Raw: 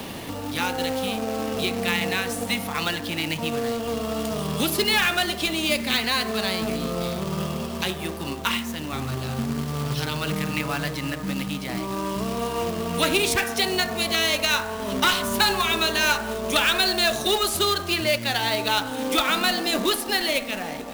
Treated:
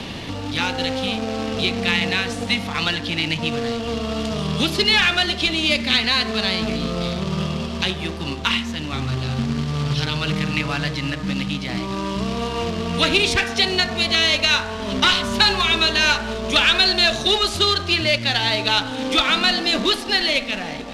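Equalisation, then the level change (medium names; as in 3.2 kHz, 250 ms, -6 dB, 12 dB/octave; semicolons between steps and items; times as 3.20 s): Chebyshev low-pass 3.9 kHz, order 2; bass shelf 210 Hz +9.5 dB; treble shelf 2.3 kHz +10 dB; 0.0 dB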